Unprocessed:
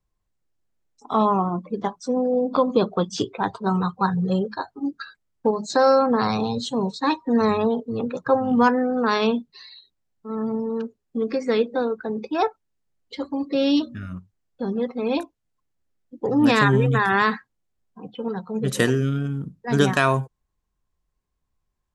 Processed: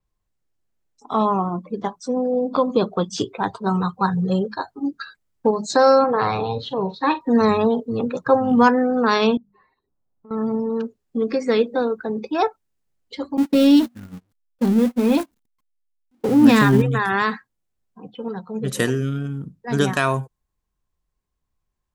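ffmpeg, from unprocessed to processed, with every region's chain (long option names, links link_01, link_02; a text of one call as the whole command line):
ffmpeg -i in.wav -filter_complex "[0:a]asettb=1/sr,asplit=3[link_01][link_02][link_03];[link_01]atrim=end=6.044[link_04];[link_02]atrim=start=6.04:end=7.21,asetpts=PTS-STARTPTS,afade=type=in:duration=0.004:curve=qsin,afade=type=out:start_time=1.166:duration=0.004:curve=qsin,lowpass=frequency=3400:width=0.5412,lowpass=frequency=3400:width=1.3066,equalizer=frequency=230:width_type=o:width=0.34:gain=-12.5,asplit=2[link_05][link_06];[link_06]adelay=44,volume=-13dB[link_07];[link_05][link_07]amix=inputs=2:normalize=0,atrim=end_sample=51597[link_08];[link_03]atrim=start=7.206[link_09];[link_04][link_08]acrossfade=duration=0.004:curve1=hsin:curve2=qsin[link_10];[link_10][link_09]acrossfade=duration=0.004:curve1=qsin:curve2=hsin,asettb=1/sr,asplit=3[link_11][link_12][link_13];[link_11]atrim=end=9.374[link_14];[link_12]atrim=start=9.37:end=10.31,asetpts=PTS-STARTPTS,afade=type=in:duration=0.004:curve=qsin,afade=type=out:start_time=0.936:duration=0.004:curve=qsin,lowpass=frequency=1200:width=0.5412,lowpass=frequency=1200:width=1.3066,bandreject=frequency=50:width_type=h:width=6,bandreject=frequency=100:width_type=h:width=6,bandreject=frequency=150:width_type=h:width=6,bandreject=frequency=200:width_type=h:width=6,acompressor=threshold=-48dB:ratio=4:attack=3.2:release=140:knee=1:detection=peak[link_15];[link_13]atrim=start=10.306[link_16];[link_14][link_15]acrossfade=duration=0.004:curve1=hsin:curve2=qsin[link_17];[link_17][link_16]acrossfade=duration=0.004:curve1=qsin:curve2=hsin,asettb=1/sr,asplit=3[link_18][link_19][link_20];[link_18]atrim=end=13.374[link_21];[link_19]atrim=start=13.37:end=16.82,asetpts=PTS-STARTPTS,afade=type=in:duration=0.004:curve=qsin,afade=type=out:start_time=3.446:duration=0.004:curve=qsin,aeval=exprs='val(0)+0.5*0.0473*sgn(val(0))':channel_layout=same,agate=range=-38dB:threshold=-26dB:ratio=16:release=100:detection=peak,equalizer=frequency=230:width=2.1:gain=9.5[link_22];[link_20]atrim=start=16.816[link_23];[link_21][link_22]acrossfade=duration=0.004:curve1=hsin:curve2=qsin[link_24];[link_24][link_23]acrossfade=duration=0.004:curve1=qsin:curve2=hsin,dynaudnorm=framelen=960:gausssize=9:maxgain=5dB,adynamicequalizer=threshold=0.00708:dfrequency=7700:dqfactor=0.7:tfrequency=7700:tqfactor=0.7:attack=5:release=100:ratio=0.375:range=2.5:mode=boostabove:tftype=highshelf" out.wav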